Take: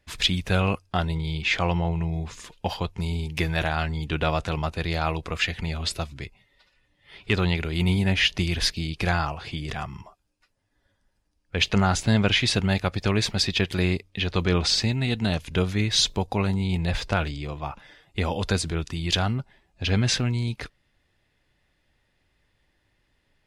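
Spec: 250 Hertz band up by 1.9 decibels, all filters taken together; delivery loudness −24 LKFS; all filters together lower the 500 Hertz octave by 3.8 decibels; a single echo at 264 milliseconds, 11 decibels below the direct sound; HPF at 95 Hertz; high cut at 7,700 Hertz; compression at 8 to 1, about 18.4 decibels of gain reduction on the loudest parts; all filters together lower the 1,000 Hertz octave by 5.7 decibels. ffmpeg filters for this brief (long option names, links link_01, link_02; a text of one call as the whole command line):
ffmpeg -i in.wav -af "highpass=95,lowpass=7700,equalizer=frequency=250:width_type=o:gain=4.5,equalizer=frequency=500:width_type=o:gain=-5,equalizer=frequency=1000:width_type=o:gain=-6.5,acompressor=threshold=-36dB:ratio=8,aecho=1:1:264:0.282,volume=16dB" out.wav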